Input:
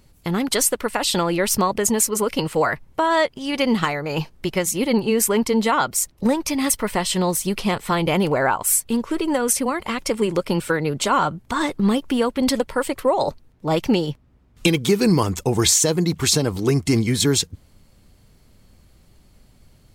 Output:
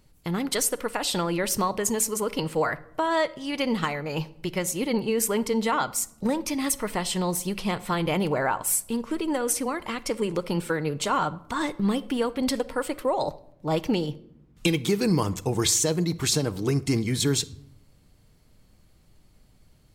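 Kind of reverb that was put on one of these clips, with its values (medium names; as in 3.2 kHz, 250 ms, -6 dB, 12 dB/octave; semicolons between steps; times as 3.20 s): simulated room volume 1900 m³, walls furnished, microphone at 0.51 m; trim -6 dB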